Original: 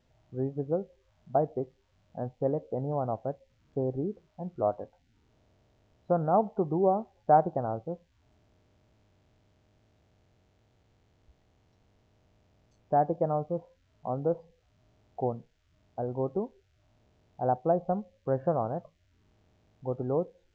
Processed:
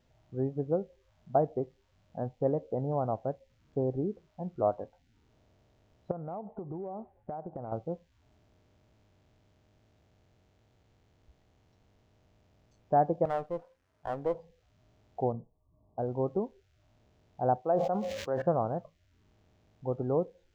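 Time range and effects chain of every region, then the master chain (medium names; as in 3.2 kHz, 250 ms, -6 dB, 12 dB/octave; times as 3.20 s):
6.11–7.72 s: low-pass 1.3 kHz + compression 16:1, threshold -35 dBFS
13.25–14.34 s: bass shelf 230 Hz -12 dB + sliding maximum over 9 samples
15.32–15.99 s: brick-wall FIR low-pass 1.2 kHz + doubling 18 ms -8 dB
17.62–18.42 s: high-pass 590 Hz 6 dB/octave + decay stretcher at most 38 dB/s
whole clip: none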